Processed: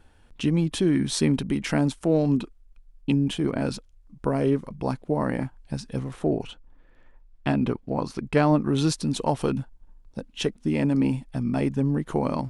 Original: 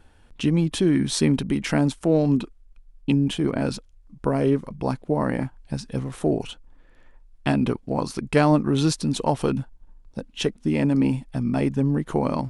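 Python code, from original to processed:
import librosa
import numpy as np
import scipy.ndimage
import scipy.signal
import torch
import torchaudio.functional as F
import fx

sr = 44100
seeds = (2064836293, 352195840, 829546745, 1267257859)

y = fx.lowpass(x, sr, hz=3600.0, slope=6, at=(6.13, 8.62))
y = y * librosa.db_to_amplitude(-2.0)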